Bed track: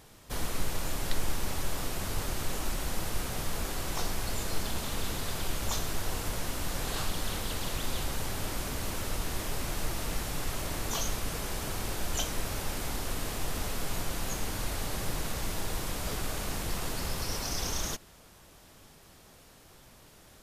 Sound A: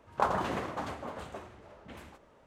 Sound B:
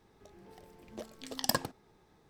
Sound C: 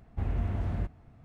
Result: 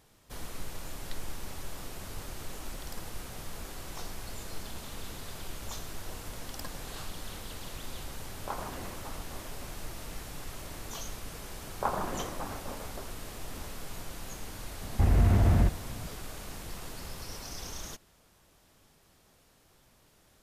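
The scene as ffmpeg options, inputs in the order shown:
ffmpeg -i bed.wav -i cue0.wav -i cue1.wav -i cue2.wav -filter_complex "[2:a]asplit=2[link_01][link_02];[1:a]asplit=2[link_03][link_04];[0:a]volume=-8dB[link_05];[link_01]acompressor=threshold=-57dB:ratio=2:attack=30:release=113:knee=1:detection=rms[link_06];[link_02]alimiter=limit=-13dB:level=0:latency=1:release=71[link_07];[link_04]lowpass=1800[link_08];[3:a]alimiter=level_in=27dB:limit=-1dB:release=50:level=0:latency=1[link_09];[link_06]atrim=end=2.29,asetpts=PTS-STARTPTS,volume=-5dB,afade=type=in:duration=0.004:curve=hsin,afade=type=out:start_time=2.286:duration=0.004:curve=hsin,adelay=1430[link_10];[link_07]atrim=end=2.29,asetpts=PTS-STARTPTS,volume=-12dB,afade=type=in:duration=0.004:curve=hsin,afade=type=out:start_time=2.286:duration=0.004:curve=hsin,adelay=5100[link_11];[link_03]atrim=end=2.46,asetpts=PTS-STARTPTS,volume=-10dB,afade=type=in:duration=0.004:curve=hsin,afade=type=out:start_time=2.456:duration=0.004:curve=hsin,adelay=8280[link_12];[link_08]atrim=end=2.46,asetpts=PTS-STARTPTS,volume=-2.5dB,afade=type=in:duration=0.004:curve=hsin,afade=type=out:start_time=2.456:duration=0.004:curve=hsin,adelay=11630[link_13];[link_09]atrim=end=1.24,asetpts=PTS-STARTPTS,volume=-14.5dB,afade=type=in:duration=0.004:curve=hsin,afade=type=out:start_time=1.236:duration=0.004:curve=hsin,adelay=14820[link_14];[link_05][link_10][link_11][link_12][link_13][link_14]amix=inputs=6:normalize=0" out.wav

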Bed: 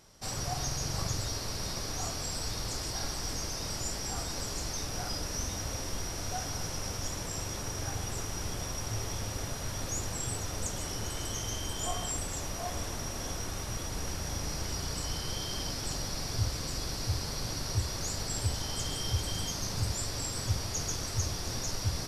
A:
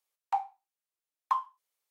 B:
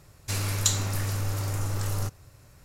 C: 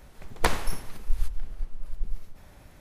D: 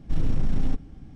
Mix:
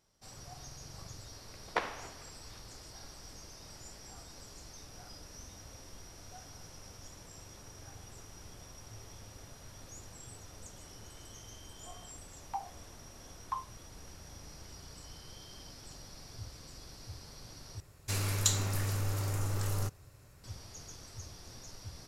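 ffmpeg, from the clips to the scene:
ffmpeg -i bed.wav -i cue0.wav -i cue1.wav -i cue2.wav -filter_complex "[0:a]volume=-15dB[link_01];[3:a]highpass=380,lowpass=3200[link_02];[2:a]equalizer=frequency=400:width=5:gain=3[link_03];[link_01]asplit=2[link_04][link_05];[link_04]atrim=end=17.804[link_06];[link_03]atrim=end=2.64,asetpts=PTS-STARTPTS,volume=-4.5dB[link_07];[link_05]atrim=start=20.436[link_08];[link_02]atrim=end=2.8,asetpts=PTS-STARTPTS,volume=-6dB,afade=type=in:duration=0.004:curve=hsin,afade=type=out:start_time=2.796:duration=0.004:curve=hsin,adelay=1320[link_09];[1:a]atrim=end=1.9,asetpts=PTS-STARTPTS,volume=-9dB,afade=type=in:duration=0.004:curve=hsin,afade=type=out:start_time=1.896:duration=0.004:curve=hsin,adelay=12210[link_10];[link_06][link_07]acrossfade=duration=0.004:curve1=hsin:curve2=hsin[link_11];[link_11][link_08]acrossfade=duration=0.004:curve1=hsin:curve2=hsin[link_12];[link_12][link_09][link_10]amix=inputs=3:normalize=0" out.wav

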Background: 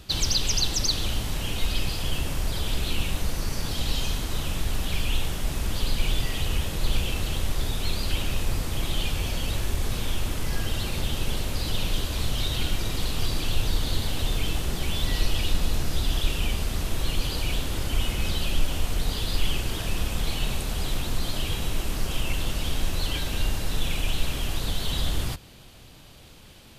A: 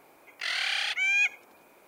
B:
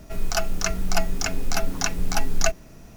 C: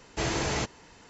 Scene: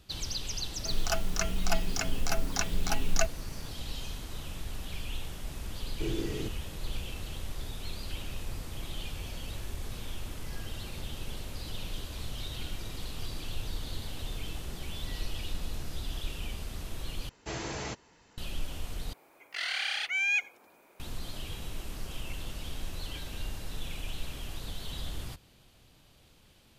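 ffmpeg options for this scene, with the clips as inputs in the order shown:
ffmpeg -i bed.wav -i cue0.wav -i cue1.wav -i cue2.wav -filter_complex "[3:a]asplit=2[link_01][link_02];[0:a]volume=-11.5dB[link_03];[link_01]lowshelf=frequency=530:width_type=q:width=3:gain=11[link_04];[link_03]asplit=3[link_05][link_06][link_07];[link_05]atrim=end=17.294[link_08];[link_02]atrim=end=1.09,asetpts=PTS-STARTPTS,volume=-8dB[link_09];[link_06]atrim=start=18.376:end=19.134[link_10];[1:a]atrim=end=1.87,asetpts=PTS-STARTPTS,volume=-3.5dB[link_11];[link_07]atrim=start=20.996[link_12];[2:a]atrim=end=2.96,asetpts=PTS-STARTPTS,volume=-6dB,afade=type=in:duration=0.004:curve=hsin,afade=type=out:start_time=2.956:duration=0.004:curve=hsin,adelay=750[link_13];[link_04]atrim=end=1.09,asetpts=PTS-STARTPTS,volume=-17.5dB,afade=type=in:duration=0.004:curve=hsin,afade=type=out:start_time=1.086:duration=0.004:curve=hsin,adelay=5830[link_14];[link_08][link_09]acrossfade=duration=0.004:curve1=hsin:curve2=hsin[link_15];[link_15][link_10]acrossfade=duration=0.004:curve1=hsin:curve2=hsin[link_16];[link_16][link_11]acrossfade=duration=0.004:curve1=hsin:curve2=hsin[link_17];[link_17][link_12]acrossfade=duration=0.004:curve1=hsin:curve2=hsin[link_18];[link_18][link_13][link_14]amix=inputs=3:normalize=0" out.wav

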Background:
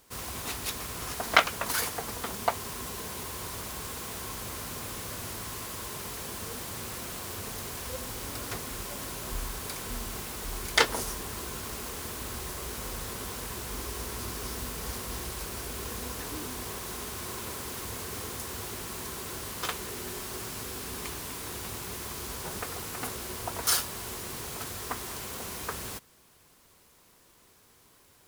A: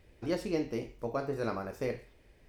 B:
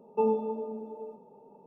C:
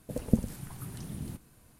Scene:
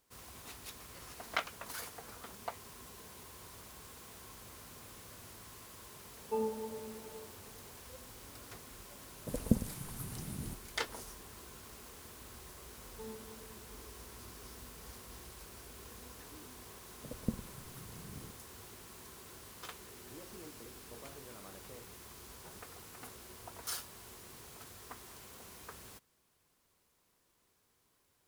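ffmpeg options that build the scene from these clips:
ffmpeg -i bed.wav -i cue0.wav -i cue1.wav -i cue2.wav -filter_complex "[1:a]asplit=2[link_01][link_02];[2:a]asplit=2[link_03][link_04];[3:a]asplit=2[link_05][link_06];[0:a]volume=-14.5dB[link_07];[link_01]highpass=1200[link_08];[link_05]bass=frequency=250:gain=-1,treble=frequency=4000:gain=5[link_09];[link_04]equalizer=frequency=1100:width_type=o:width=2.9:gain=-9.5[link_10];[link_02]alimiter=level_in=4dB:limit=-24dB:level=0:latency=1:release=71,volume=-4dB[link_11];[link_08]atrim=end=2.48,asetpts=PTS-STARTPTS,volume=-16.5dB,afade=type=in:duration=0.004:curve=hsin,afade=type=out:start_time=2.476:duration=0.004:curve=hsin,adelay=640[link_12];[link_03]atrim=end=1.66,asetpts=PTS-STARTPTS,volume=-9dB,afade=type=in:duration=0.004:curve=hsin,afade=type=out:start_time=1.656:duration=0.004:curve=hsin,adelay=6140[link_13];[link_09]atrim=end=1.79,asetpts=PTS-STARTPTS,volume=-3dB,afade=type=in:duration=0.004:curve=hsin,afade=type=out:start_time=1.786:duration=0.004:curve=hsin,adelay=9180[link_14];[link_10]atrim=end=1.66,asetpts=PTS-STARTPTS,volume=-17dB,afade=type=in:duration=0.004:curve=hsin,afade=type=out:start_time=1.656:duration=0.004:curve=hsin,adelay=12810[link_15];[link_06]atrim=end=1.79,asetpts=PTS-STARTPTS,volume=-11dB,afade=type=in:duration=0.004:curve=hsin,afade=type=out:start_time=1.786:duration=0.004:curve=hsin,adelay=16950[link_16];[link_11]atrim=end=2.48,asetpts=PTS-STARTPTS,volume=-16dB,afade=type=in:duration=0.004:curve=hsin,afade=type=out:start_time=2.476:duration=0.004:curve=hsin,adelay=876708S[link_17];[link_07][link_12][link_13][link_14][link_15][link_16][link_17]amix=inputs=7:normalize=0" out.wav

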